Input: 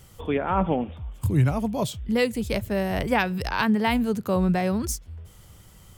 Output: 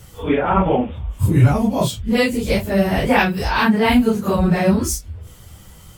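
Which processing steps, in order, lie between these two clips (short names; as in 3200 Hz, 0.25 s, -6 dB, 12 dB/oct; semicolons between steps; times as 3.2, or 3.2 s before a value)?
phase scrambler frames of 0.1 s; gain +7.5 dB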